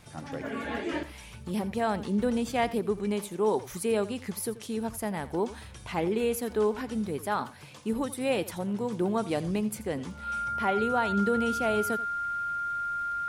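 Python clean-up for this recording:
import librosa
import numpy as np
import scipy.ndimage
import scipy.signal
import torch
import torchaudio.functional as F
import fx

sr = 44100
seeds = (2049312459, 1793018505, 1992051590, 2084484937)

y = fx.fix_declick_ar(x, sr, threshold=6.5)
y = fx.notch(y, sr, hz=1400.0, q=30.0)
y = fx.fix_echo_inverse(y, sr, delay_ms=85, level_db=-16.5)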